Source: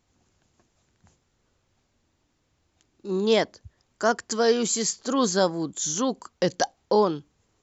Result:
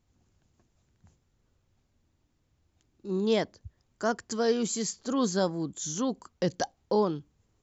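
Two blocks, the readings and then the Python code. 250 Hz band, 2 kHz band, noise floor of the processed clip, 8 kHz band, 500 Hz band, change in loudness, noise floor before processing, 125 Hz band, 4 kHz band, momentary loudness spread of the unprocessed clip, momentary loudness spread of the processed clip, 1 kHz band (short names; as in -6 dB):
-2.5 dB, -7.5 dB, -74 dBFS, n/a, -5.5 dB, -5.0 dB, -72 dBFS, -1.0 dB, -7.5 dB, 7 LU, 7 LU, -6.5 dB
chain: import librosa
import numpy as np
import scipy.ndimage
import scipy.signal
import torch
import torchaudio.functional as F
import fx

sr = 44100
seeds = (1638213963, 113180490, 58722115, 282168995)

y = fx.low_shelf(x, sr, hz=240.0, db=10.0)
y = y * librosa.db_to_amplitude(-7.5)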